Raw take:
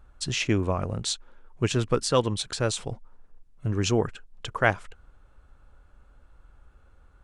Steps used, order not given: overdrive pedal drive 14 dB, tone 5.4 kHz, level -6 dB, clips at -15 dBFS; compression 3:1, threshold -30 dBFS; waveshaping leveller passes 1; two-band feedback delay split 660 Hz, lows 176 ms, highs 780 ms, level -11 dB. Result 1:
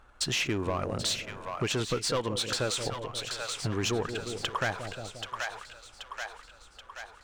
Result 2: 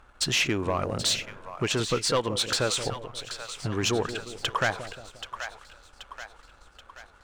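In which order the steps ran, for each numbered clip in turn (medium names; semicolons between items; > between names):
overdrive pedal > waveshaping leveller > two-band feedback delay > compression; compression > overdrive pedal > two-band feedback delay > waveshaping leveller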